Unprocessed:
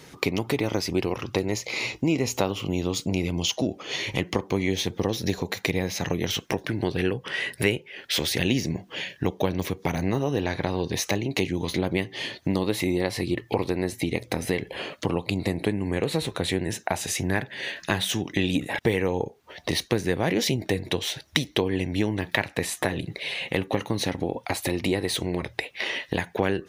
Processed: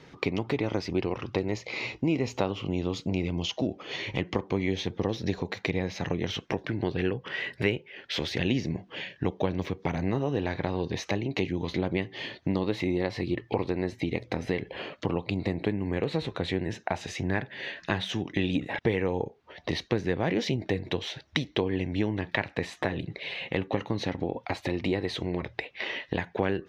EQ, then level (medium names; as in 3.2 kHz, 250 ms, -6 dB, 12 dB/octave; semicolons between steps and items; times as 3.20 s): distance through air 200 m; treble shelf 7.1 kHz +6 dB; -2.5 dB